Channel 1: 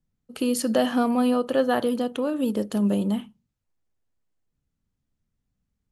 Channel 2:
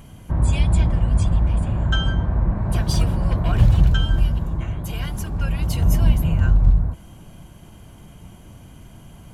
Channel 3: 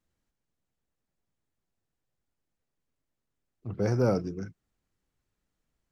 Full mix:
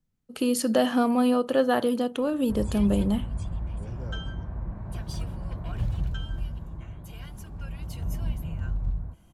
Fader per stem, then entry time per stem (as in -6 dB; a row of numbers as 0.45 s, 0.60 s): -0.5 dB, -14.0 dB, -19.5 dB; 0.00 s, 2.20 s, 0.00 s